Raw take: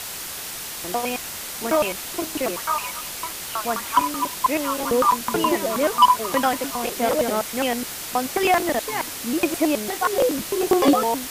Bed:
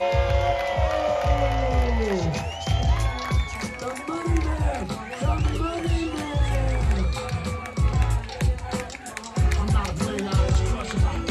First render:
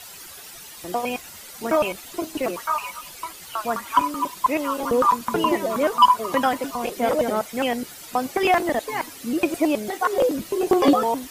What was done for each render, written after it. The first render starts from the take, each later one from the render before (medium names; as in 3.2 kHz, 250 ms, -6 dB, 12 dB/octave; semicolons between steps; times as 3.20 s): noise reduction 12 dB, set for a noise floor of -33 dBFS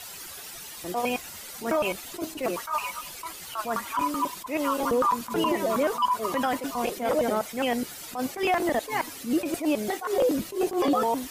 peak limiter -16 dBFS, peak gain reduction 9.5 dB; attacks held to a fixed rise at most 170 dB/s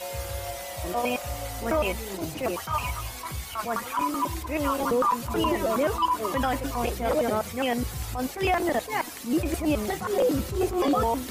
add bed -13 dB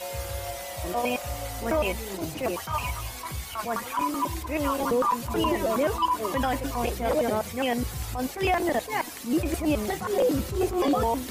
dynamic bell 1.3 kHz, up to -5 dB, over -46 dBFS, Q 7.7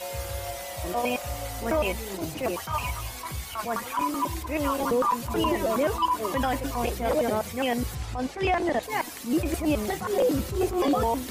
7.95–8.83 s: distance through air 67 m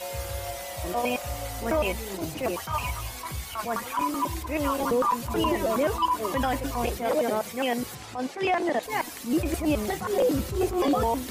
6.97–8.86 s: high-pass 190 Hz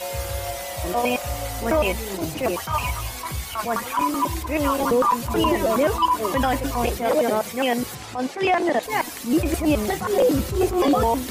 trim +5 dB